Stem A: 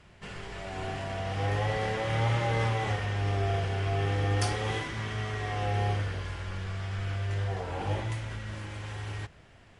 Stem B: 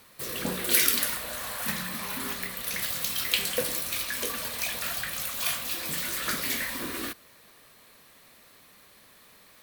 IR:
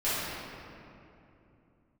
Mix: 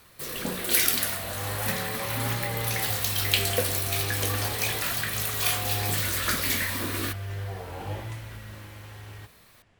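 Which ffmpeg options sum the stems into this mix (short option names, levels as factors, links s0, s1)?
-filter_complex "[0:a]volume=0.473[s0];[1:a]volume=0.944[s1];[s0][s1]amix=inputs=2:normalize=0,dynaudnorm=f=240:g=11:m=1.5"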